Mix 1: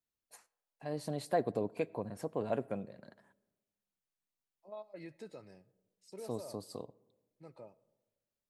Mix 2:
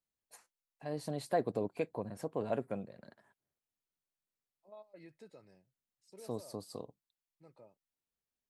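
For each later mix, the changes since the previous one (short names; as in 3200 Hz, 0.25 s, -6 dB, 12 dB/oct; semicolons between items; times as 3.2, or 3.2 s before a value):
second voice -6.0 dB; reverb: off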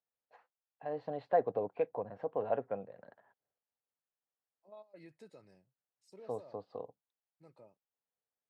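first voice: add speaker cabinet 130–2700 Hz, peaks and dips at 150 Hz -7 dB, 220 Hz -8 dB, 340 Hz -8 dB, 490 Hz +5 dB, 780 Hz +6 dB, 2300 Hz -6 dB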